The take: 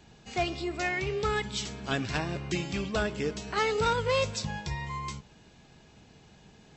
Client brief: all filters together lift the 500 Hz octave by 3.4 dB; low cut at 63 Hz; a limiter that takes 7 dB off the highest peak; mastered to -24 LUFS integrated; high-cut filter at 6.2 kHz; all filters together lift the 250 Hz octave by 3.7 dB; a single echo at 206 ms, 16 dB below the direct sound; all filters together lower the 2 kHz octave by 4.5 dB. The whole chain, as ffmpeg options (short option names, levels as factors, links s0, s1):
-af "highpass=63,lowpass=6200,equalizer=f=250:t=o:g=4.5,equalizer=f=500:t=o:g=3,equalizer=f=2000:t=o:g=-6,alimiter=limit=0.075:level=0:latency=1,aecho=1:1:206:0.158,volume=2.66"